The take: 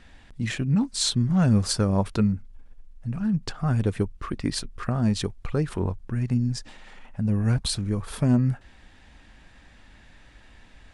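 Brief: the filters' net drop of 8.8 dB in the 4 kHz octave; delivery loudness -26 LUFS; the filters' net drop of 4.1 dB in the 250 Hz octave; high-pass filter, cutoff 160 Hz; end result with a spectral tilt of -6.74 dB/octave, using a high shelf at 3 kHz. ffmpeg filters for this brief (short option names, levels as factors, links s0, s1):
-af "highpass=160,equalizer=f=250:t=o:g=-3.5,highshelf=f=3000:g=-6,equalizer=f=4000:t=o:g=-5.5,volume=1.68"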